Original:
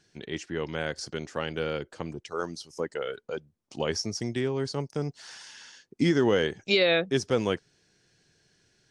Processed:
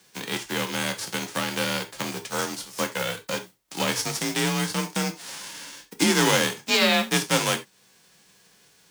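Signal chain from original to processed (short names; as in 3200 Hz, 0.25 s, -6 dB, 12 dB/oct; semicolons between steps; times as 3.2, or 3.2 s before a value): spectral whitening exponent 0.3; in parallel at +2.5 dB: compressor, threshold -39 dBFS, peak gain reduction 19.5 dB; on the sum: frequency shift +40 Hz; non-linear reverb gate 0.11 s falling, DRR 5 dB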